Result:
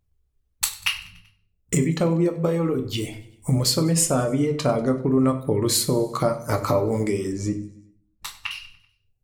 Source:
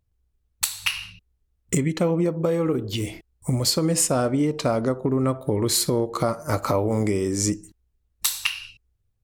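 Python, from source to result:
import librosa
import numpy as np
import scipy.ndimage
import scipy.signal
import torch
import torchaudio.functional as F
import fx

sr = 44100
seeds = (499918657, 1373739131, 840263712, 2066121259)

y = fx.lowpass(x, sr, hz=1300.0, slope=6, at=(7.32, 8.51))
y = fx.dereverb_blind(y, sr, rt60_s=0.71)
y = fx.echo_feedback(y, sr, ms=96, feedback_pct=57, wet_db=-21.0)
y = fx.room_shoebox(y, sr, seeds[0], volume_m3=59.0, walls='mixed', distance_m=0.34)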